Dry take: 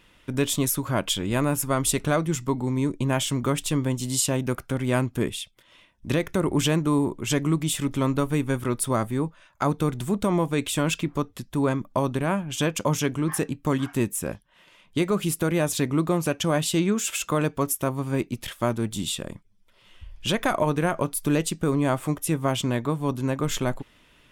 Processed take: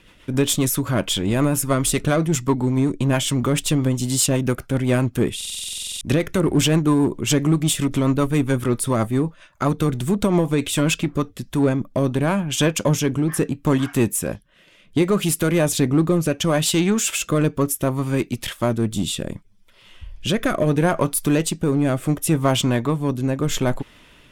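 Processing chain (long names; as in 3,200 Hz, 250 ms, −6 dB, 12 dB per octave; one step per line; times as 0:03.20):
rotating-speaker cabinet horn 7.5 Hz, later 0.7 Hz, at 0:10.82
in parallel at −4 dB: hard clipping −26.5 dBFS, distortion −7 dB
on the sum: buffer that repeats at 0:05.36, samples 2,048, times 13
level +4 dB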